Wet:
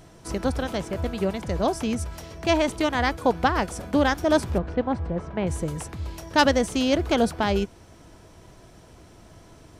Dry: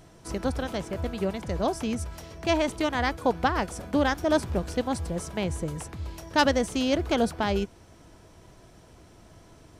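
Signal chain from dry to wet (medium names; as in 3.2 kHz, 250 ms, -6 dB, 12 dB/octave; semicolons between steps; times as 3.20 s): 4.58–5.47 s: low-pass 1.9 kHz 12 dB/octave; trim +3 dB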